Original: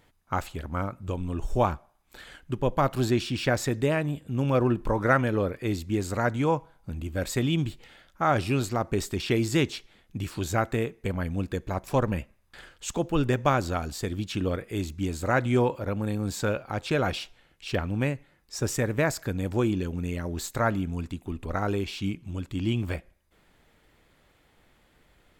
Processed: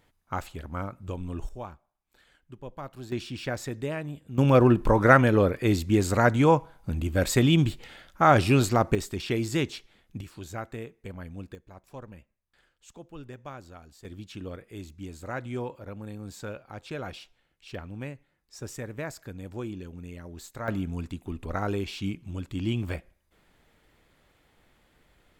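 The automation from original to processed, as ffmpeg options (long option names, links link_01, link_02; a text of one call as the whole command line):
ffmpeg -i in.wav -af "asetnsamples=nb_out_samples=441:pad=0,asendcmd='1.49 volume volume -15.5dB;3.12 volume volume -7dB;4.38 volume volume 5dB;8.95 volume volume -3dB;10.21 volume volume -10.5dB;11.55 volume volume -18.5dB;14.05 volume volume -10.5dB;20.68 volume volume -1.5dB',volume=-3.5dB" out.wav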